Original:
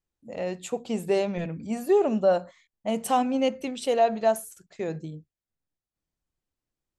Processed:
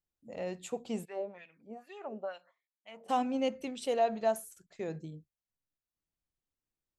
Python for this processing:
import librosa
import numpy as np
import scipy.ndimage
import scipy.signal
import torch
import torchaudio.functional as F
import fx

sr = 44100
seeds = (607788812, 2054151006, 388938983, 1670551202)

y = fx.wah_lfo(x, sr, hz=2.2, low_hz=470.0, high_hz=3000.0, q=2.3, at=(1.04, 3.08), fade=0.02)
y = y * 10.0 ** (-7.0 / 20.0)